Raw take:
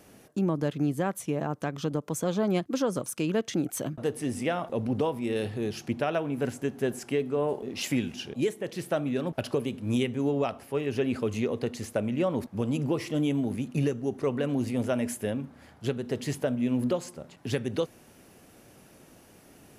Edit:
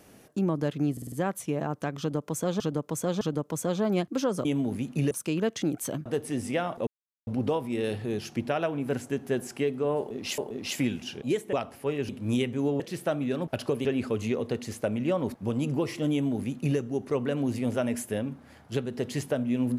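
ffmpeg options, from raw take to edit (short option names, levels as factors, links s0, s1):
-filter_complex "[0:a]asplit=15[s0][s1][s2][s3][s4][s5][s6][s7][s8][s9][s10][s11][s12][s13][s14];[s0]atrim=end=0.972[s15];[s1]atrim=start=0.918:end=0.972[s16];[s2]atrim=start=0.918:end=0.972[s17];[s3]atrim=start=0.918:end=0.972[s18];[s4]atrim=start=0.918:end=2.402[s19];[s5]atrim=start=1.788:end=2.402[s20];[s6]atrim=start=1.788:end=3.032[s21];[s7]atrim=start=13.238:end=13.902[s22];[s8]atrim=start=3.028:end=4.79,asetpts=PTS-STARTPTS,afade=t=out:st=1.758:d=0.004:c=hsin,apad=pad_dur=0.4[s23];[s9]atrim=start=4.79:end=7.902,asetpts=PTS-STARTPTS,afade=t=in:d=0.004:c=hsin[s24];[s10]atrim=start=7.498:end=8.652[s25];[s11]atrim=start=10.408:end=10.972[s26];[s12]atrim=start=9.698:end=10.412[s27];[s13]atrim=start=8.648:end=9.702[s28];[s14]atrim=start=10.968[s29];[s15][s16]acrossfade=d=0.004:c1=hsin:c2=hsin[s30];[s30][s17]acrossfade=d=0.004:c1=hsin:c2=hsin[s31];[s31][s18]acrossfade=d=0.004:c1=hsin:c2=hsin[s32];[s32][s19]acrossfade=d=0.004:c1=hsin:c2=hsin[s33];[s33][s20]acrossfade=d=0.004:c1=hsin:c2=hsin[s34];[s34][s21]acrossfade=d=0.004:c1=hsin:c2=hsin[s35];[s35][s22]acrossfade=d=0.004:c1=hsin:c2=hsin[s36];[s23][s24]concat=n=2:v=0:a=1[s37];[s36][s37]acrossfade=d=0.004:c1=hsin:c2=hsin[s38];[s38][s25]acrossfade=d=0.004:c1=hsin:c2=hsin[s39];[s39][s26]acrossfade=d=0.004:c1=hsin:c2=hsin[s40];[s40][s27]acrossfade=d=0.004:c1=hsin:c2=hsin[s41];[s41][s28]acrossfade=d=0.004:c1=hsin:c2=hsin[s42];[s42][s29]acrossfade=d=0.004:c1=hsin:c2=hsin"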